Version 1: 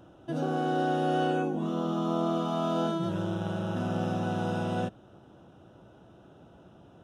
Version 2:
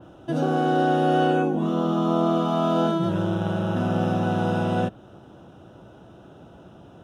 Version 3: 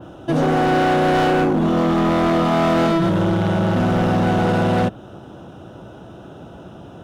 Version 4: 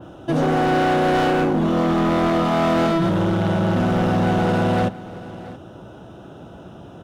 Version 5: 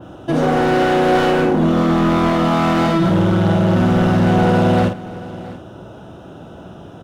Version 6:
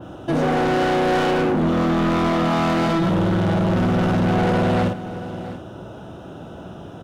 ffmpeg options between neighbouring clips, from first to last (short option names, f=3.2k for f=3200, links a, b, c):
-af "adynamicequalizer=threshold=0.00178:dfrequency=6900:dqfactor=0.71:tfrequency=6900:tqfactor=0.71:attack=5:release=100:ratio=0.375:range=2.5:mode=cutabove:tftype=bell,volume=7dB"
-af "volume=22.5dB,asoftclip=hard,volume=-22.5dB,volume=8.5dB"
-af "aecho=1:1:676:0.133,volume=-1.5dB"
-filter_complex "[0:a]asplit=2[a][b];[b]adelay=49,volume=-6dB[c];[a][c]amix=inputs=2:normalize=0,volume=2.5dB"
-af "asoftclip=type=tanh:threshold=-15.5dB"